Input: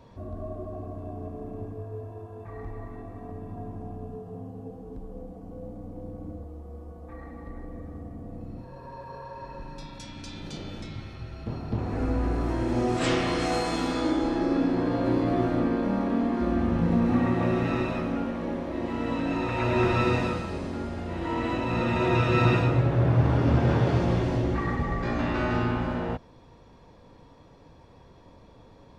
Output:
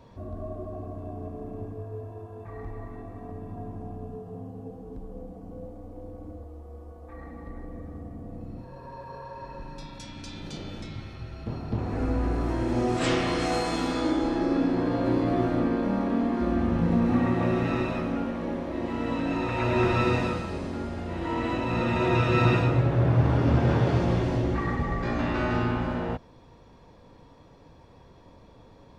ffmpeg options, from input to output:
-filter_complex "[0:a]asettb=1/sr,asplit=3[a][b][c];[a]atrim=end=5.664[d];[b]atrim=start=5.66:end=7.17,asetpts=PTS-STARTPTS,afade=t=in:d=0.004:c=qsin,afade=t=out:st=1.506:d=0.004:c=qsin,equalizer=f=160:w=1.5:g=-11[e];[c]atrim=start=7.166[f];[d][e]acrossfade=d=0.004:c1=hsin:c2=qsin[g];[g][f]acrossfade=d=0.004:c1=qsin:c2=hsin"

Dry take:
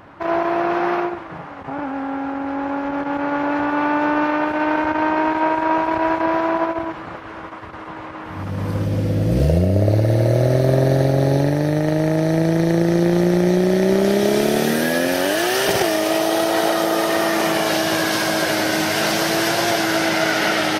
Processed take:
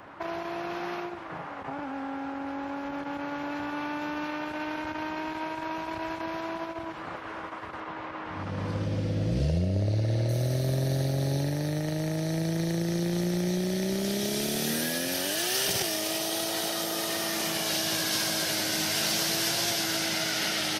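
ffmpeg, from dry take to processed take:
-filter_complex "[0:a]asettb=1/sr,asplit=3[a][b][c];[a]atrim=end=7.804[d];[b]atrim=start=7.8:end=10.29,asetpts=PTS-STARTPTS,afade=t=in:d=0.004:c=qsin,afade=t=out:st=2.486:d=0.004:c=qsin,lowpass=5.6k[e];[c]atrim=start=10.286[f];[d][e]acrossfade=d=0.004:c1=hsin:c2=qsin[g];[g][f]acrossfade=d=0.004:c1=qsin:c2=hsin,lowshelf=f=230:g=-8.5,acrossover=split=210|3000[h][i][j];[i]acompressor=threshold=-32dB:ratio=6[k];[h][k][j]amix=inputs=3:normalize=0,volume=-2dB"

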